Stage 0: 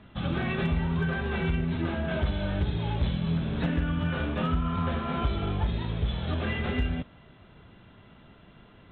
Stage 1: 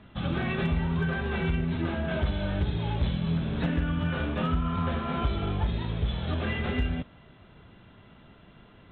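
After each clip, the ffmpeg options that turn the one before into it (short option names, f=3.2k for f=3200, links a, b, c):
-af anull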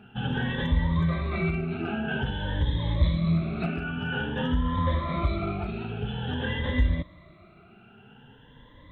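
-af "afftfilt=real='re*pow(10,19/40*sin(2*PI*(1.1*log(max(b,1)*sr/1024/100)/log(2)-(0.5)*(pts-256)/sr)))':imag='im*pow(10,19/40*sin(2*PI*(1.1*log(max(b,1)*sr/1024/100)/log(2)-(0.5)*(pts-256)/sr)))':win_size=1024:overlap=0.75,volume=-2.5dB"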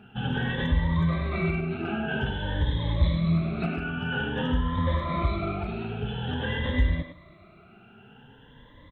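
-filter_complex "[0:a]asplit=2[a][b];[b]adelay=100,highpass=300,lowpass=3.4k,asoftclip=type=hard:threshold=-21dB,volume=-6dB[c];[a][c]amix=inputs=2:normalize=0"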